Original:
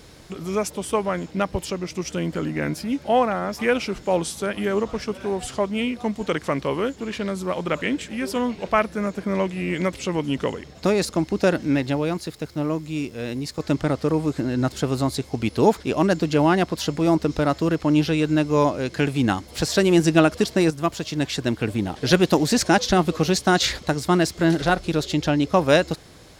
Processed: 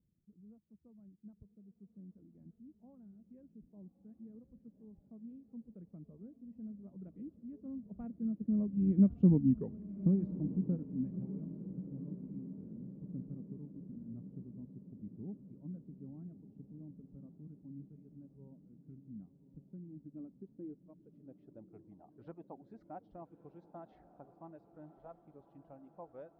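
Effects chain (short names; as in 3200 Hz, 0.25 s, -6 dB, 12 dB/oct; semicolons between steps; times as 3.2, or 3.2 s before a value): Doppler pass-by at 9.29, 29 m/s, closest 7.2 m; low-pass sweep 200 Hz -> 800 Hz, 19.85–22.05; reverb removal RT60 2 s; diffused feedback echo 1.164 s, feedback 63%, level -13.5 dB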